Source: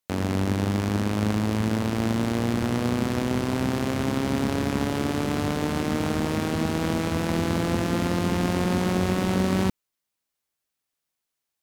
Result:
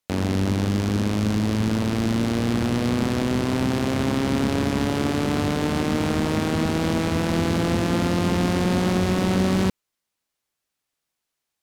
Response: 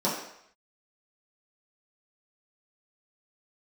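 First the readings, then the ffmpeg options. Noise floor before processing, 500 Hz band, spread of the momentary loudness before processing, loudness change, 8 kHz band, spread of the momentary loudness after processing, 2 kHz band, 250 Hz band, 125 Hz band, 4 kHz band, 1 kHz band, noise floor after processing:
−84 dBFS, +2.5 dB, 2 LU, +2.5 dB, +2.0 dB, 2 LU, +2.0 dB, +3.0 dB, +2.5 dB, +3.5 dB, +1.5 dB, −82 dBFS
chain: -filter_complex "[0:a]highshelf=frequency=12000:gain=-7,acrossover=split=2500[link_01][link_02];[link_01]asoftclip=type=hard:threshold=-18.5dB[link_03];[link_03][link_02]amix=inputs=2:normalize=0,volume=3.5dB"

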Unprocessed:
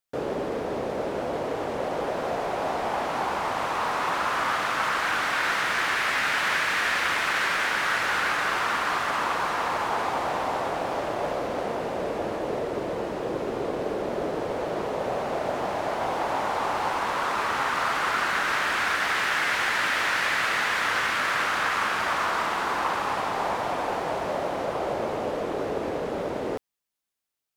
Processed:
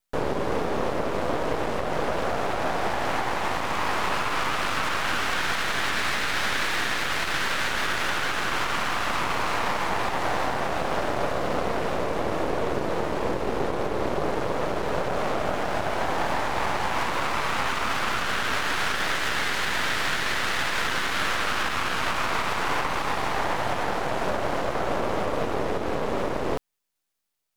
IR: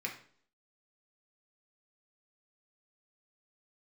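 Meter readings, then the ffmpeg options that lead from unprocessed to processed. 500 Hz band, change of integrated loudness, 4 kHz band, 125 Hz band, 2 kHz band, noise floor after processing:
+0.5 dB, 0.0 dB, +2.0 dB, +6.0 dB, −1.5 dB, −28 dBFS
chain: -af "alimiter=limit=-20.5dB:level=0:latency=1:release=206,aeval=exprs='max(val(0),0)':channel_layout=same,volume=8dB"

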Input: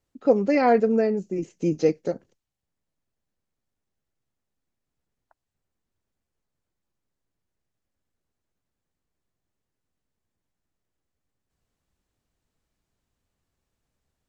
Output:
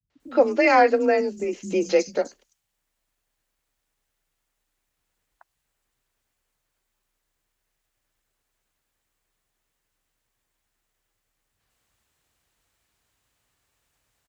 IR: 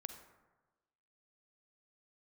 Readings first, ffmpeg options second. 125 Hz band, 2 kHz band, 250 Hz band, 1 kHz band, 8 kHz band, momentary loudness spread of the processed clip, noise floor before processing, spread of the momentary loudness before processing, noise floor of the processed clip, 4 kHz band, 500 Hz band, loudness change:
below −10 dB, +9.0 dB, −2.5 dB, +5.0 dB, can't be measured, 12 LU, −84 dBFS, 13 LU, −79 dBFS, +9.0 dB, +1.5 dB, +1.5 dB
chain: -filter_complex "[0:a]tiltshelf=frequency=670:gain=-7,asplit=2[link_01][link_02];[link_02]alimiter=limit=-16.5dB:level=0:latency=1:release=281,volume=0dB[link_03];[link_01][link_03]amix=inputs=2:normalize=0,acrossover=split=170|5200[link_04][link_05][link_06];[link_05]adelay=100[link_07];[link_06]adelay=200[link_08];[link_04][link_07][link_08]amix=inputs=3:normalize=0,afreqshift=30"

